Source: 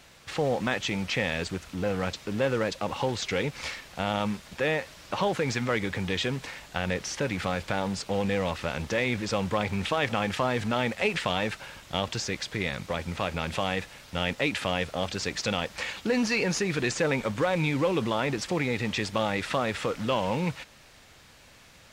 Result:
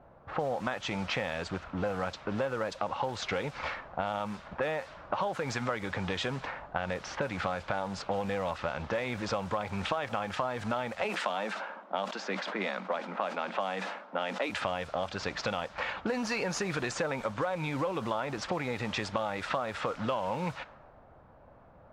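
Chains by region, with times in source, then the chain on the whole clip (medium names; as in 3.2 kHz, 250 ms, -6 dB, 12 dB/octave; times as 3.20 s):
11.04–14.50 s: Chebyshev high-pass 190 Hz, order 6 + decay stretcher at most 83 dB/s
whole clip: level-controlled noise filter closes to 610 Hz, open at -23.5 dBFS; high-order bell 920 Hz +8 dB; compression 6:1, threshold -29 dBFS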